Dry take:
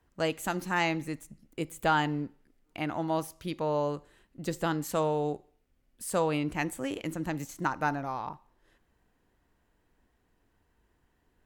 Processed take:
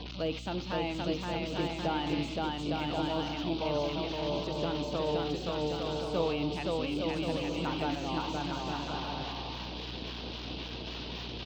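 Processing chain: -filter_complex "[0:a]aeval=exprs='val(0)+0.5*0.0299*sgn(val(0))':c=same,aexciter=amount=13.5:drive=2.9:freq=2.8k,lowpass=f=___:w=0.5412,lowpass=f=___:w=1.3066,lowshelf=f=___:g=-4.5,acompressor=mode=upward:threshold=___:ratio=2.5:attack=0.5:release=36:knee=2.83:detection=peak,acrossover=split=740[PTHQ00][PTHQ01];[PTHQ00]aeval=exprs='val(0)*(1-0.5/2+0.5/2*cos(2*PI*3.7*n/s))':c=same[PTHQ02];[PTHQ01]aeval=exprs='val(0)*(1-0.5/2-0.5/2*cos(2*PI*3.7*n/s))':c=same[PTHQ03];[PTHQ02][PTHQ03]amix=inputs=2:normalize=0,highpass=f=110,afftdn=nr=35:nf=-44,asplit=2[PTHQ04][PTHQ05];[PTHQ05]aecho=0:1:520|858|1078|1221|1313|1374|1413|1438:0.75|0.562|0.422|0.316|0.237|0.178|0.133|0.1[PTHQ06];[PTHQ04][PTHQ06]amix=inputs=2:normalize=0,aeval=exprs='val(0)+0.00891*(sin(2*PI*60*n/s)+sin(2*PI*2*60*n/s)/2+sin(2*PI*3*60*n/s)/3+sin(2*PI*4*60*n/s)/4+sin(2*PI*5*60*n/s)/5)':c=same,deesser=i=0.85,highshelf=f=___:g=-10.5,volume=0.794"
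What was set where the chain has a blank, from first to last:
4k, 4k, 180, 0.0355, 2k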